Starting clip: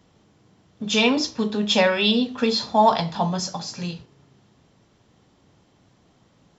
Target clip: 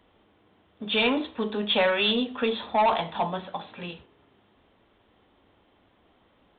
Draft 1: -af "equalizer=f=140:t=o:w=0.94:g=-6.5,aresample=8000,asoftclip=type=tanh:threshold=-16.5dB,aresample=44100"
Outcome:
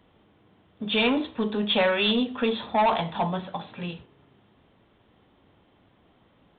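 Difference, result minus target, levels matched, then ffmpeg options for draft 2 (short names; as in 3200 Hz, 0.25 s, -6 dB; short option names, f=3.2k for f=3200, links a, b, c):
125 Hz band +5.0 dB
-af "equalizer=f=140:t=o:w=0.94:g=-16.5,aresample=8000,asoftclip=type=tanh:threshold=-16.5dB,aresample=44100"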